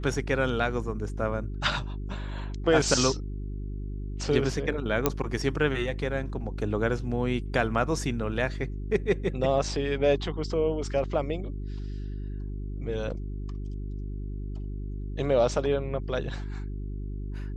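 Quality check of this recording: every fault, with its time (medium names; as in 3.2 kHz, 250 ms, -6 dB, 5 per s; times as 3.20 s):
hum 50 Hz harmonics 8 -34 dBFS
5.06 s: pop -7 dBFS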